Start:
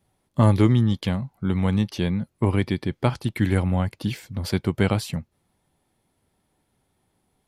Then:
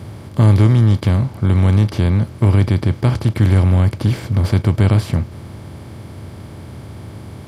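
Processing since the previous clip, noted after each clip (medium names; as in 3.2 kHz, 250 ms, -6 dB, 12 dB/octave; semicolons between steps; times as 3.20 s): spectral levelling over time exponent 0.4; peaking EQ 84 Hz +12 dB 1.9 oct; trim -4 dB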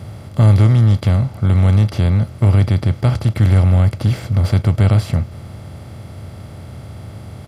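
comb 1.5 ms, depth 38%; trim -1 dB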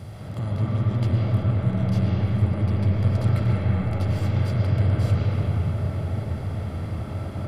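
compression, threshold -18 dBFS, peak gain reduction 11 dB; peak limiter -16.5 dBFS, peak gain reduction 6 dB; reverberation RT60 5.3 s, pre-delay 75 ms, DRR -7.5 dB; trim -6 dB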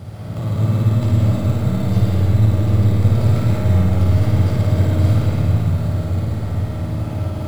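in parallel at -4.5 dB: sample-rate reducer 3.8 kHz, jitter 0%; on the sum: flutter echo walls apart 9.4 m, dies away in 0.9 s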